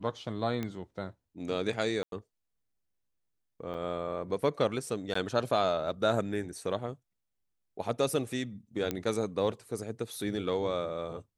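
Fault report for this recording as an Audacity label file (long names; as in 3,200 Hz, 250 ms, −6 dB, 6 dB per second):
0.630000	0.630000	click −21 dBFS
2.030000	2.120000	drop-out 92 ms
3.740000	3.740000	drop-out 4.7 ms
5.140000	5.150000	drop-out 14 ms
8.910000	8.910000	click −16 dBFS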